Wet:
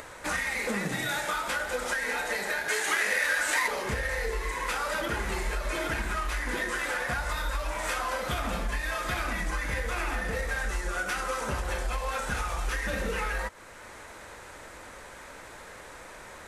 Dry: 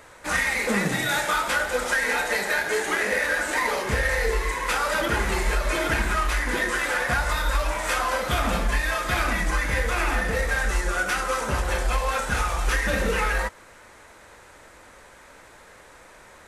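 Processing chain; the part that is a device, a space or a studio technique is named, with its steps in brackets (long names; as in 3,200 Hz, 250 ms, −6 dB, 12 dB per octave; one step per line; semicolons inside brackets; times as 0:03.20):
upward and downward compression (upward compression, threshold −41 dBFS; downward compressor 3 to 1, threshold −31 dBFS, peak gain reduction 10 dB)
0:02.68–0:03.68: tilt shelving filter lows −7 dB, about 710 Hz
level +1 dB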